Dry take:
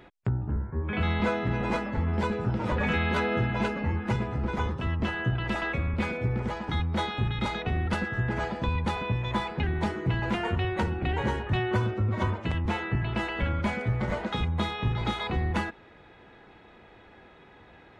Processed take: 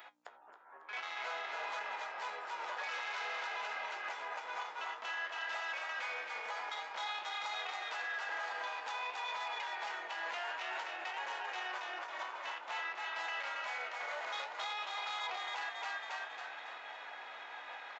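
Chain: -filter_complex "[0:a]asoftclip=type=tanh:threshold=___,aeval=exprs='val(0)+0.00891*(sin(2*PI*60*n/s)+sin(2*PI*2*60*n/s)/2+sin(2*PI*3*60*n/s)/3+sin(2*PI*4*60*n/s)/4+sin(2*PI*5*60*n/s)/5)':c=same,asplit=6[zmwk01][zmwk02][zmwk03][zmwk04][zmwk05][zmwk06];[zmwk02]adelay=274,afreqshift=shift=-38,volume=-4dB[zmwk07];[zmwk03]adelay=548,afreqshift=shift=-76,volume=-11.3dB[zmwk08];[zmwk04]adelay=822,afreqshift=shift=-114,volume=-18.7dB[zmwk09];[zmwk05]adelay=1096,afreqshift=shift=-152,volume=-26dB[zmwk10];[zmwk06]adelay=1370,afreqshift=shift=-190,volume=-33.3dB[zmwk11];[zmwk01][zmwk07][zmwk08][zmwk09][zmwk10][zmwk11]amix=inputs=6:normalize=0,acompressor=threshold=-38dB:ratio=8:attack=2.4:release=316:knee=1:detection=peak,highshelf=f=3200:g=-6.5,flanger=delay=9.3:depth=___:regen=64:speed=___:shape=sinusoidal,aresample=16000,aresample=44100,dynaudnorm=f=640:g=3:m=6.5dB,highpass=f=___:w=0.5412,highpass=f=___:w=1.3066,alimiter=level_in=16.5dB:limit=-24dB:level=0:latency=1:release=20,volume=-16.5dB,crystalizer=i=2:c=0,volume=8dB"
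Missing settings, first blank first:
-26.5dB, 9.4, 0.53, 720, 720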